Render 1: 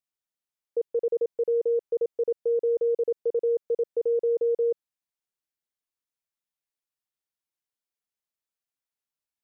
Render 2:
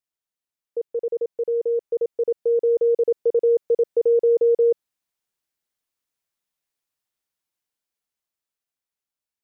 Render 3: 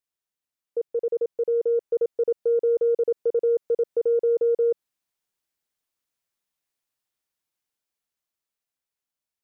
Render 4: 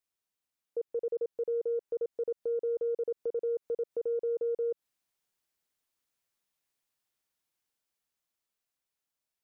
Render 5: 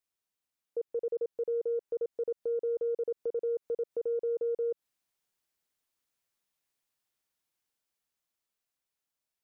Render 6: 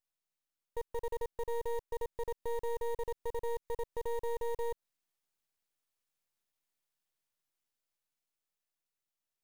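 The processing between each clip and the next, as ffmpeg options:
ffmpeg -i in.wav -af "dynaudnorm=framelen=520:gausssize=9:maxgain=7dB" out.wav
ffmpeg -i in.wav -af "alimiter=limit=-17dB:level=0:latency=1:release=100,aeval=exprs='0.141*(cos(1*acos(clip(val(0)/0.141,-1,1)))-cos(1*PI/2))+0.00126*(cos(3*acos(clip(val(0)/0.141,-1,1)))-cos(3*PI/2))':channel_layout=same" out.wav
ffmpeg -i in.wav -af "alimiter=level_in=3dB:limit=-24dB:level=0:latency=1:release=127,volume=-3dB" out.wav
ffmpeg -i in.wav -af anull out.wav
ffmpeg -i in.wav -af "aeval=exprs='max(val(0),0)':channel_layout=same,acrusher=bits=5:mode=log:mix=0:aa=0.000001" out.wav

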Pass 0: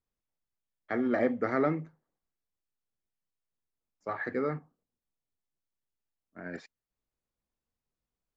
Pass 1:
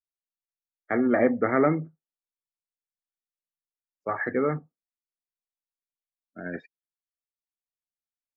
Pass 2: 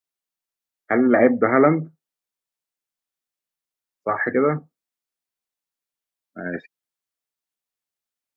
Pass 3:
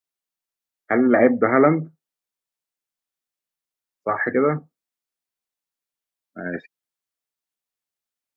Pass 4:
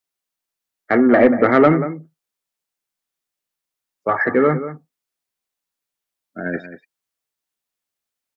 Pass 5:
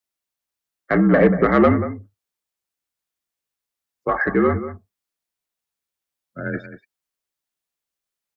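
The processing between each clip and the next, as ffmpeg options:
ffmpeg -i in.wav -af "afftdn=noise_reduction=30:noise_floor=-46,volume=6dB" out.wav
ffmpeg -i in.wav -af "lowshelf=frequency=66:gain=-10,volume=6.5dB" out.wav
ffmpeg -i in.wav -af anull out.wav
ffmpeg -i in.wav -filter_complex "[0:a]asplit=2[link_01][link_02];[link_02]adelay=186.6,volume=-13dB,highshelf=frequency=4000:gain=-4.2[link_03];[link_01][link_03]amix=inputs=2:normalize=0,acontrast=30,volume=-1dB" out.wav
ffmpeg -i in.wav -af "afreqshift=-58,volume=-2dB" out.wav

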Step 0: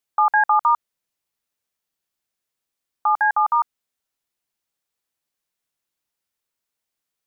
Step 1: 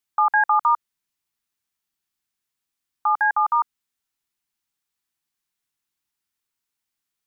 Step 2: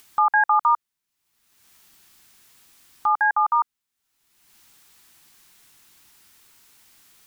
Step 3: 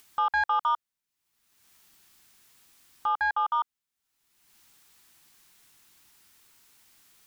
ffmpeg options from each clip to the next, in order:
ffmpeg -i in.wav -af "equalizer=frequency=550:width_type=o:width=0.48:gain=-14.5" out.wav
ffmpeg -i in.wav -af "acompressor=mode=upward:threshold=-33dB:ratio=2.5" out.wav
ffmpeg -i in.wav -af "asoftclip=type=tanh:threshold=-13dB,volume=-5dB" out.wav

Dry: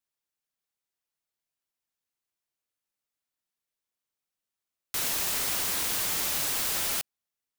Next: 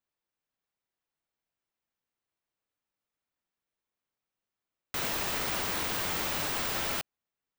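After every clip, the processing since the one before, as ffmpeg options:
ffmpeg -i in.wav -af "equalizer=frequency=13000:width_type=o:width=2.2:gain=-15,volume=4dB" out.wav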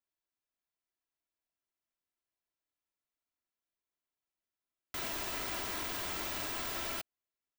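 ffmpeg -i in.wav -af "aecho=1:1:3:0.43,volume=-7dB" out.wav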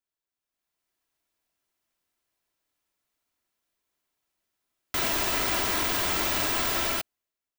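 ffmpeg -i in.wav -af "dynaudnorm=framelen=120:gausssize=11:maxgain=11.5dB" out.wav

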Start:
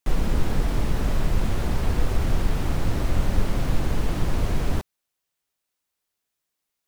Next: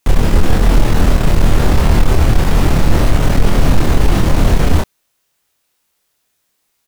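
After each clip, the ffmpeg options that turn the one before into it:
ffmpeg -i in.wav -filter_complex "[0:a]asplit=2[link_01][link_02];[link_02]aeval=exprs='0.422*sin(PI/2*3.16*val(0)/0.422)':channel_layout=same,volume=-6.5dB[link_03];[link_01][link_03]amix=inputs=2:normalize=0,asplit=2[link_04][link_05];[link_05]adelay=26,volume=-2.5dB[link_06];[link_04][link_06]amix=inputs=2:normalize=0,volume=3dB" out.wav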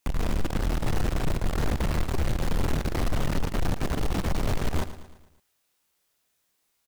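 ffmpeg -i in.wav -af "aeval=exprs='(tanh(7.08*val(0)+0.4)-tanh(0.4))/7.08':channel_layout=same,aecho=1:1:112|224|336|448|560:0.211|0.108|0.055|0.028|0.0143,volume=-6dB" out.wav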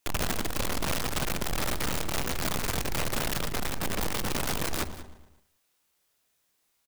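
ffmpeg -i in.wav -af "aeval=exprs='(mod(15*val(0)+1,2)-1)/15':channel_layout=same,aecho=1:1:184:0.15" out.wav

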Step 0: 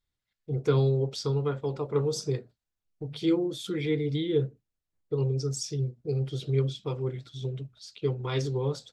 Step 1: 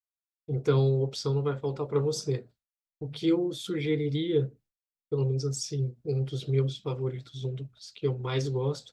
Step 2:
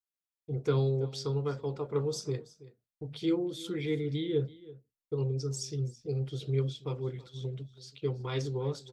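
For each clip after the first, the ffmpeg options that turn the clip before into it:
ffmpeg -i in.wav -af "agate=range=-33dB:threshold=-52dB:ratio=3:detection=peak" out.wav
ffmpeg -i in.wav -af "aecho=1:1:329:0.112,volume=-4dB" out.wav

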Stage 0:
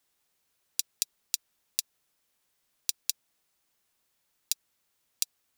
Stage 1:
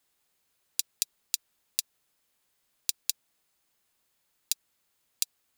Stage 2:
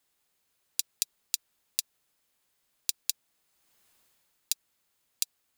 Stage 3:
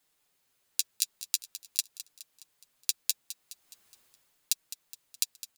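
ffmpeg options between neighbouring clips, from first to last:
ffmpeg -i in.wav -af "bandreject=frequency=5700:width=18,volume=1dB" out.wav
ffmpeg -i in.wav -af "dynaudnorm=framelen=110:gausssize=11:maxgain=14dB,volume=-1dB" out.wav
ffmpeg -i in.wav -af "flanger=delay=6.4:depth=3.9:regen=-15:speed=0.43:shape=sinusoidal,aecho=1:1:209|418|627|836|1045:0.2|0.106|0.056|0.0297|0.0157,volume=5dB" out.wav

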